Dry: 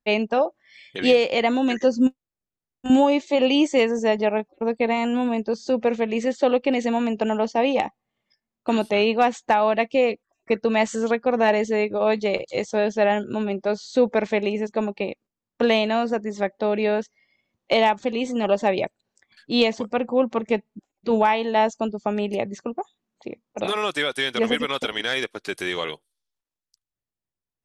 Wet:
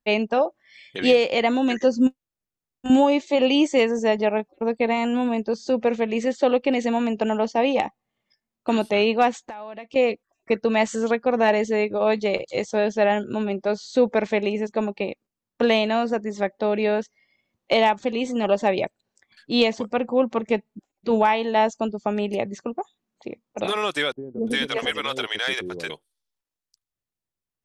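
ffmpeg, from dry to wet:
-filter_complex "[0:a]asettb=1/sr,asplit=3[s0][s1][s2];[s0]atrim=end=9.314[s3];[s1]atrim=start=9.31:end=9.96,asetpts=PTS-STARTPTS,afade=t=in:d=0.004:c=qsin,afade=t=out:st=0.646:d=0.004:c=qsin,acompressor=threshold=0.02:ratio=6:attack=3.2:release=140:knee=1:detection=peak[s4];[s2]atrim=start=9.956[s5];[s3][s4]acrossfade=d=0.004:c1=hsin:c2=qsin[s6];[s6][s5]acrossfade=d=0.004:c1=qsin:c2=hsin,asettb=1/sr,asplit=3[s7][s8][s9];[s7]atrim=end=24.124[s10];[s8]atrim=start=24.12:end=25.9,asetpts=PTS-STARTPTS,afade=t=in:d=0.004:c=qsin,afade=t=out:st=1.776:d=0.004:c=qsin,acrossover=split=460[s11][s12];[s12]adelay=350[s13];[s11][s13]amix=inputs=2:normalize=0,atrim=end_sample=78498[s14];[s9]atrim=start=25.896[s15];[s10][s14]acrossfade=d=0.004:c1=hsin:c2=qsin[s16];[s16][s15]acrossfade=d=0.004:c1=qsin:c2=hsin"

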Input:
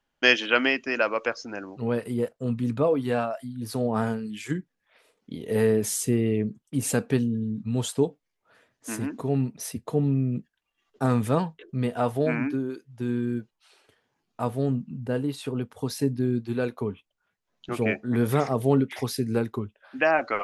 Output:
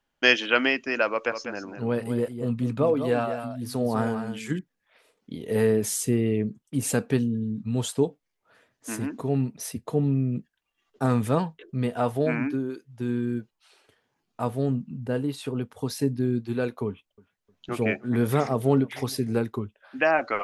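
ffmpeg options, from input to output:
-filter_complex "[0:a]asettb=1/sr,asplit=3[s0][s1][s2];[s0]atrim=end=1.104[s3];[s1]atrim=start=1.1:end=4.59,asetpts=PTS-STARTPTS,afade=t=in:d=0.004:c=qsin,afade=t=out:st=3.486:d=0.004:c=qsin,aecho=1:1:199:0.376,atrim=end_sample=153909[s4];[s2]atrim=start=4.586[s5];[s3][s4]acrossfade=d=0.004:c1=hsin:c2=qsin[s6];[s6][s5]acrossfade=d=0.004:c1=qsin:c2=hsin,asettb=1/sr,asplit=3[s7][s8][s9];[s7]atrim=end=16.874[s10];[s8]atrim=start=16.87:end=19.33,asetpts=PTS-STARTPTS,afade=t=in:d=0.004:c=qsin,afade=t=out:st=2.456:d=0.004:c=qsin,asplit=2[s11][s12];[s12]adelay=307,lowpass=f=4000:p=1,volume=0.0708,asplit=2[s13][s14];[s14]adelay=307,lowpass=f=4000:p=1,volume=0.39,asplit=2[s15][s16];[s16]adelay=307,lowpass=f=4000:p=1,volume=0.39[s17];[s11][s13][s15][s17]amix=inputs=4:normalize=0,atrim=end_sample=108486[s18];[s9]atrim=start=19.326[s19];[s10][s18]acrossfade=d=0.004:c1=hsin:c2=qsin[s20];[s20][s19]acrossfade=d=0.004:c1=qsin:c2=hsin"

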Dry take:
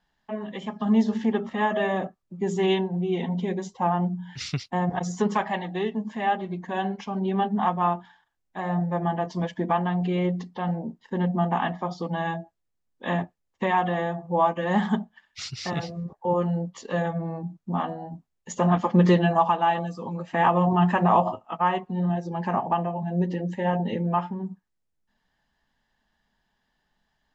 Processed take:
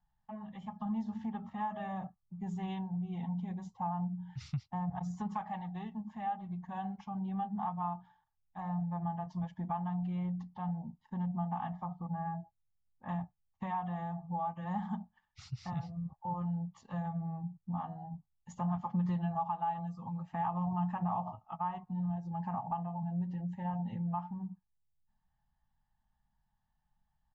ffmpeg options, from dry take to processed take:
-filter_complex "[0:a]asettb=1/sr,asplit=3[s0][s1][s2];[s0]atrim=end=11.854[s3];[s1]atrim=start=11.85:end=13.09,asetpts=PTS-STARTPTS,afade=t=in:d=0.004:c=qsin,afade=t=out:st=1.236:d=0.004:c=qsin,lowpass=f=1900:w=0.5412,lowpass=f=1900:w=1.3066[s4];[s2]atrim=start=13.086[s5];[s3][s4]acrossfade=d=0.004:c1=hsin:c2=qsin[s6];[s6][s5]acrossfade=d=0.004:c1=qsin:c2=hsin,firequalizer=gain_entry='entry(130,0);entry(300,-22);entry(430,-29);entry(830,-5);entry(1600,-18);entry(3000,-20)':delay=0.05:min_phase=1,acompressor=threshold=0.0178:ratio=2,bandreject=f=990:w=12"

